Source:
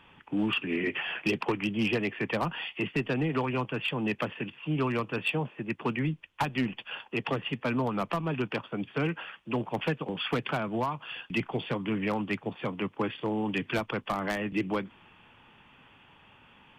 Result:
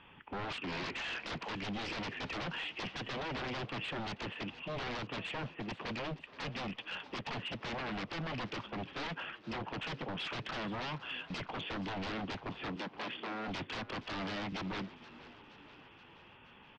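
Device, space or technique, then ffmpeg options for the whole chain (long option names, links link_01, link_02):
synthesiser wavefolder: -filter_complex "[0:a]aeval=exprs='0.0237*(abs(mod(val(0)/0.0237+3,4)-2)-1)':channel_layout=same,lowpass=frequency=4800:width=0.5412,lowpass=frequency=4800:width=1.3066,asettb=1/sr,asplit=3[link_01][link_02][link_03];[link_01]atrim=end=12.764[link_04];[link_02]atrim=start=12.76:end=13.48,asetpts=PTS-STARTPTS,afade=type=in:duration=0.004:curve=qsin,afade=type=out:start_time=0.716:duration=0.004:curve=qsin,highpass=frequency=180:width=0.5412,highpass=frequency=180:width=1.3066[link_05];[link_03]atrim=start=13.476[link_06];[link_04][link_05]acrossfade=duration=0.004:curve1=hsin:curve2=qsin[link_07];[link_07][link_06]acrossfade=duration=0.004:curve1=qsin:curve2=hsin,asplit=6[link_08][link_09][link_10][link_11][link_12][link_13];[link_09]adelay=474,afreqshift=50,volume=-17.5dB[link_14];[link_10]adelay=948,afreqshift=100,volume=-22.2dB[link_15];[link_11]adelay=1422,afreqshift=150,volume=-27dB[link_16];[link_12]adelay=1896,afreqshift=200,volume=-31.7dB[link_17];[link_13]adelay=2370,afreqshift=250,volume=-36.4dB[link_18];[link_08][link_14][link_15][link_16][link_17][link_18]amix=inputs=6:normalize=0,volume=-1.5dB"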